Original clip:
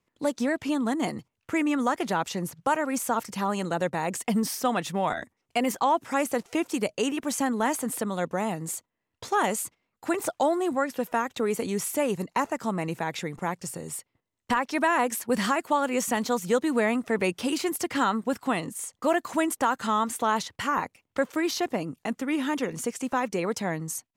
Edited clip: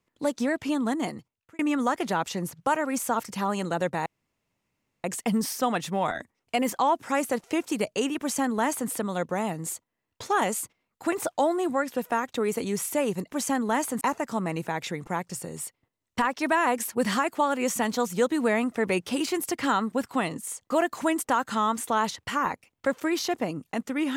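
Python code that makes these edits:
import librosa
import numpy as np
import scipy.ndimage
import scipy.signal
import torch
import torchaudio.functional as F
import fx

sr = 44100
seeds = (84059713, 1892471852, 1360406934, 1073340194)

y = fx.edit(x, sr, fx.fade_out_span(start_s=0.92, length_s=0.67),
    fx.insert_room_tone(at_s=4.06, length_s=0.98),
    fx.duplicate(start_s=7.22, length_s=0.7, to_s=12.33), tone=tone)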